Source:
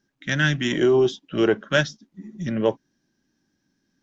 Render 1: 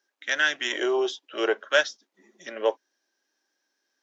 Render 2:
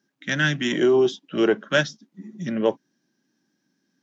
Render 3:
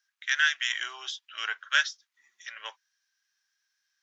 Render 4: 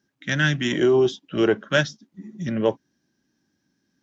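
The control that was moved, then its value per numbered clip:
high-pass, cutoff frequency: 460 Hz, 150 Hz, 1.3 kHz, 55 Hz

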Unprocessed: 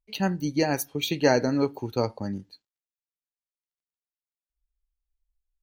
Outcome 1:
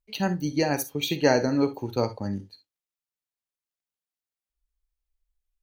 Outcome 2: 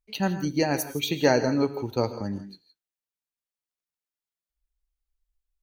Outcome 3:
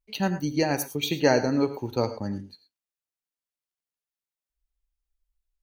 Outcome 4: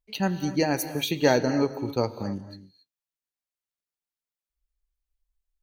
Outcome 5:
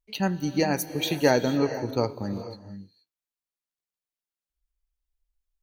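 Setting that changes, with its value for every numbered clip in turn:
gated-style reverb, gate: 80 ms, 190 ms, 130 ms, 300 ms, 500 ms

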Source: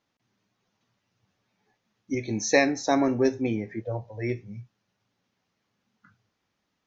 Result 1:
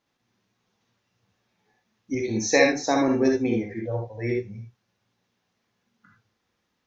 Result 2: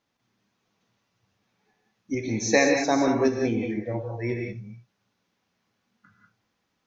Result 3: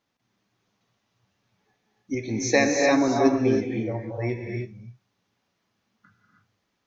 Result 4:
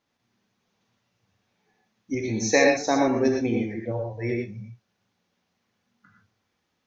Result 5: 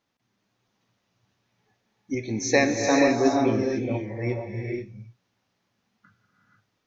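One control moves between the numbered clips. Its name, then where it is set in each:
gated-style reverb, gate: 90 ms, 210 ms, 340 ms, 140 ms, 520 ms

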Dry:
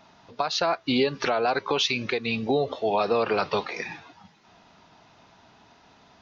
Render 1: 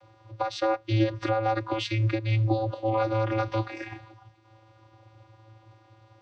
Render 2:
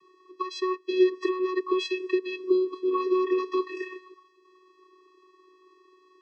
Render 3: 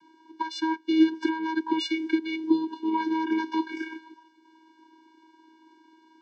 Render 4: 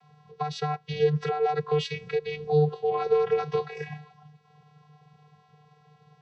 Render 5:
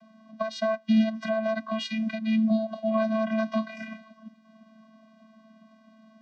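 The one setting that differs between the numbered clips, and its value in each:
vocoder, frequency: 110 Hz, 370 Hz, 320 Hz, 150 Hz, 220 Hz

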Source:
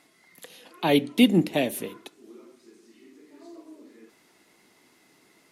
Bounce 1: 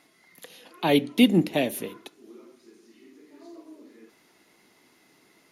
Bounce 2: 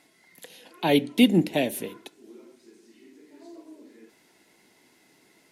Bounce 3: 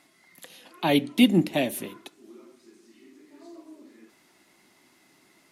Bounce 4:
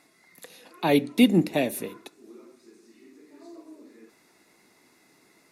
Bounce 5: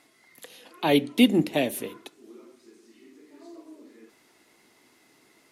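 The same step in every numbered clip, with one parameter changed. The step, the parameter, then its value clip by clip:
band-stop, frequency: 8 kHz, 1.2 kHz, 460 Hz, 3.1 kHz, 180 Hz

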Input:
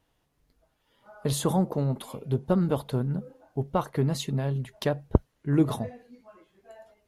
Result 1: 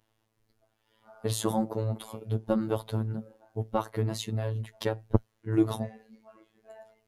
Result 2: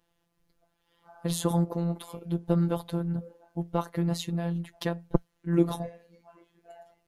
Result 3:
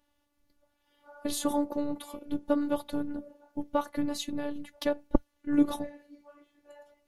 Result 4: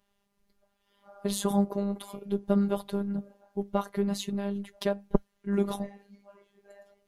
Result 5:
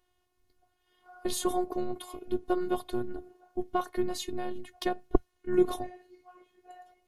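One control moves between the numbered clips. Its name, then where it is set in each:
robot voice, frequency: 110 Hz, 170 Hz, 290 Hz, 200 Hz, 360 Hz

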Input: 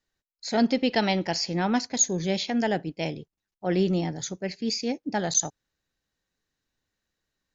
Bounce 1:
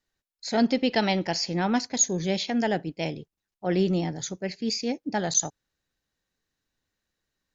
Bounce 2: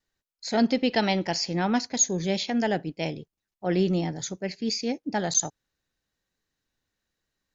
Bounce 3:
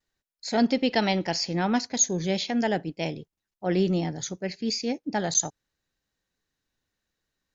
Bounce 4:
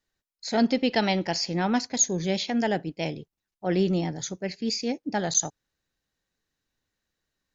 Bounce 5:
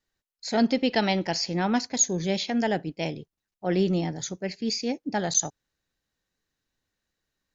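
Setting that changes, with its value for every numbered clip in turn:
vibrato, rate: 13 Hz, 0.98 Hz, 0.4 Hz, 7.7 Hz, 2.7 Hz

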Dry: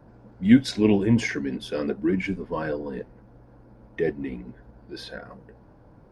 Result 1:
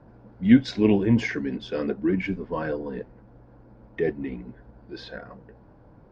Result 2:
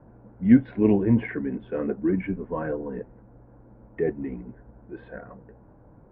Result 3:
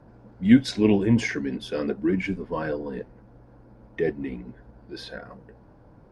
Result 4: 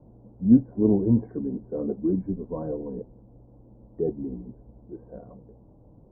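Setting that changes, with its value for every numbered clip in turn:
Bessel low-pass, frequency: 4.2 kHz, 1.4 kHz, 11 kHz, 550 Hz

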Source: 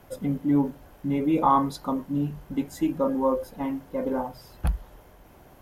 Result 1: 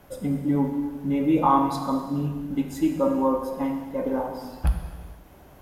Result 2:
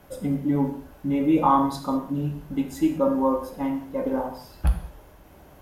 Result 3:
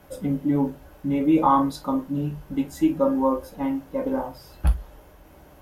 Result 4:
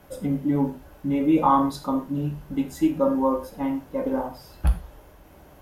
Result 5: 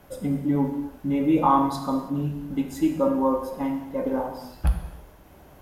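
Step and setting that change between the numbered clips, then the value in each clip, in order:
gated-style reverb, gate: 530 ms, 230 ms, 80 ms, 140 ms, 350 ms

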